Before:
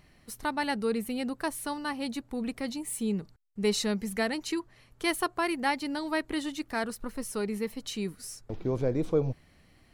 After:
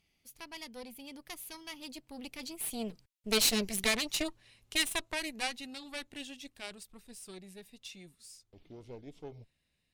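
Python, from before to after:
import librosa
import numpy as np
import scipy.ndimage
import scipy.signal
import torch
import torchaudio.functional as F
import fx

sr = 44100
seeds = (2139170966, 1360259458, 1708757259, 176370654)

y = fx.doppler_pass(x, sr, speed_mps=34, closest_m=28.0, pass_at_s=3.74)
y = fx.cheby_harmonics(y, sr, harmonics=(6,), levels_db=(-10,), full_scale_db=-16.0)
y = fx.high_shelf_res(y, sr, hz=2000.0, db=8.0, q=1.5)
y = y * 10.0 ** (-5.0 / 20.0)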